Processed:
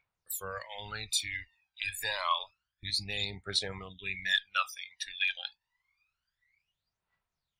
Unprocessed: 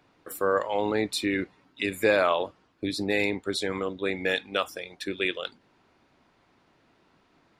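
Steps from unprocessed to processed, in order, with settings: wow and flutter 20 cents; amplifier tone stack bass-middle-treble 10-0-10; phaser 0.28 Hz, delay 1.3 ms, feedback 74%; dynamic bell 2.1 kHz, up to -6 dB, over -43 dBFS, Q 2.5; spectral noise reduction 18 dB

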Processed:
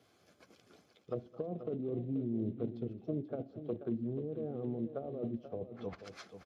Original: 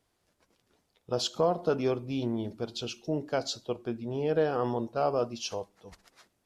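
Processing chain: Chebyshev shaper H 2 -14 dB, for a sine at -14.5 dBFS; comb of notches 940 Hz; reverse; compression 8:1, threshold -40 dBFS, peak gain reduction 17.5 dB; reverse; low-pass that closes with the level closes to 320 Hz, closed at -40.5 dBFS; on a send: multi-tap echo 215/484 ms -20/-11 dB; on the sum: trim +9 dB; Speex 36 kbps 32 kHz

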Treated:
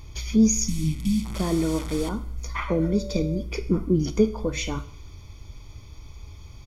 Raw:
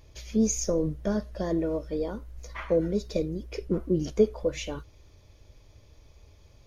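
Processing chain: 0.68–2.09 s: one-bit delta coder 64 kbps, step -34.5 dBFS; 2.68–3.41 s: whistle 580 Hz -32 dBFS; comb 0.9 ms, depth 64%; in parallel at +1 dB: compression, threshold -36 dBFS, peak gain reduction 18.5 dB; 0.64–1.23 s: on the sum: spectral replace 310–2200 Hz before; Schroeder reverb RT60 0.64 s, combs from 25 ms, DRR 13 dB; trim +1.5 dB

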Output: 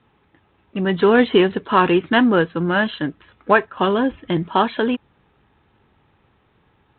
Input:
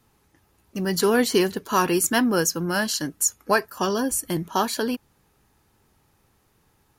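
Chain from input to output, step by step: high-pass 100 Hz 6 dB/octave, from 0.99 s 49 Hz; trim +6 dB; G.726 32 kbps 8 kHz

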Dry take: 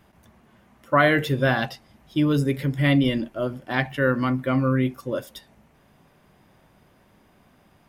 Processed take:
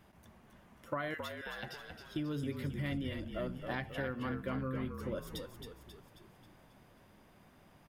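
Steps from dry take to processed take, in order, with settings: compression 6:1, threshold -31 dBFS, peak gain reduction 16.5 dB; 1.14–1.63 s: high-pass 1.4 kHz 12 dB/octave; frequency-shifting echo 269 ms, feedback 52%, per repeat -49 Hz, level -6.5 dB; trim -5 dB

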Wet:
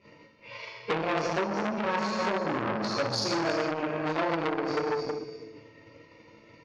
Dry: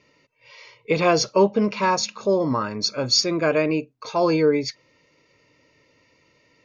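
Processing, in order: chunks repeated in reverse 230 ms, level -9 dB; treble shelf 2.8 kHz -6.5 dB; plate-style reverb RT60 1.1 s, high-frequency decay 0.8×, DRR -9 dB; transient shaper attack +7 dB, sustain -6 dB; distance through air 97 m; feedback comb 110 Hz, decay 0.63 s, harmonics all, mix 80%; in parallel at -1 dB: peak limiter -21.5 dBFS, peak gain reduction 17 dB; on the sum: compression 10:1, threshold -24 dBFS, peak gain reduction 15 dB; on a send: delay 333 ms -13.5 dB; on the sum: transformer saturation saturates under 1.9 kHz; trim +3 dB

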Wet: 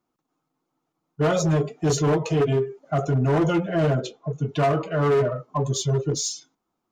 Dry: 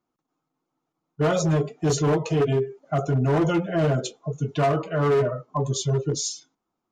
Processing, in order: in parallel at -10.5 dB: saturation -31.5 dBFS, distortion -6 dB; 3.94–4.54 s: on the sum: distance through air 120 m

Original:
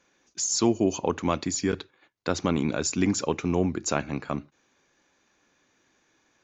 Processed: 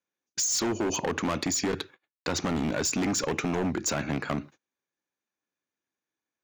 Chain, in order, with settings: in parallel at +1.5 dB: peak limiter -16 dBFS, peak gain reduction 8.5 dB; on the sum: high-pass 88 Hz 12 dB/octave; overload inside the chain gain 20.5 dB; compression 10:1, threshold -25 dBFS, peak gain reduction 4 dB; dynamic bell 1.8 kHz, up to +3 dB, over -51 dBFS, Q 1.8; gate -47 dBFS, range -31 dB

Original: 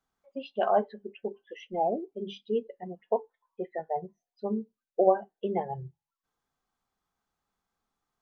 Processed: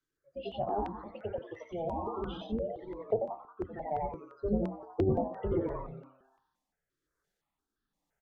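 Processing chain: octave divider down 2 oct, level -2 dB; graphic EQ with 31 bands 100 Hz -4 dB, 315 Hz +9 dB, 1.6 kHz +6 dB; frequency-shifting echo 90 ms, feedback 50%, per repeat +130 Hz, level -3 dB; rotary cabinet horn 1.2 Hz; de-hum 65.18 Hz, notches 27; low-pass that closes with the level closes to 590 Hz, closed at -23.5 dBFS; 3.73–5.77 s: bass shelf 370 Hz +5 dB; stepped phaser 5.8 Hz 200–2200 Hz

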